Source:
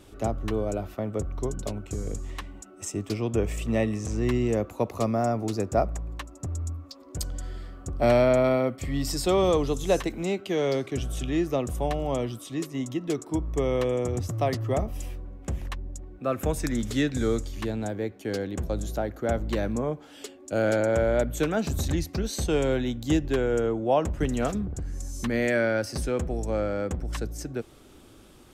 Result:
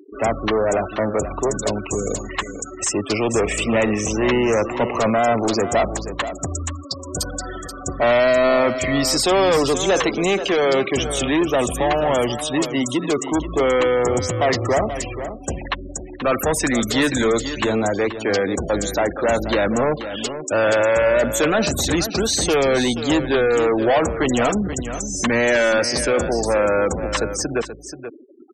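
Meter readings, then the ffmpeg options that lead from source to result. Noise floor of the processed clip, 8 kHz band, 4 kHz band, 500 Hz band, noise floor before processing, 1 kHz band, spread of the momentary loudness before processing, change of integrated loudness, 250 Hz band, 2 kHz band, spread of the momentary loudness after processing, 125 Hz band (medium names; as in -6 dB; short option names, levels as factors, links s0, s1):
-35 dBFS, +13.5 dB, +13.5 dB, +8.0 dB, -50 dBFS, +10.5 dB, 12 LU, +8.0 dB, +6.5 dB, +12.5 dB, 10 LU, +1.5 dB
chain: -filter_complex "[0:a]acrusher=bits=8:mode=log:mix=0:aa=0.000001,asplit=2[s0][s1];[s1]highpass=f=720:p=1,volume=22.4,asoftclip=type=tanh:threshold=0.316[s2];[s0][s2]amix=inputs=2:normalize=0,lowpass=f=8000:p=1,volume=0.501,afftfilt=real='re*gte(hypot(re,im),0.0631)':imag='im*gte(hypot(re,im),0.0631)':win_size=1024:overlap=0.75,aecho=1:1:481:0.282"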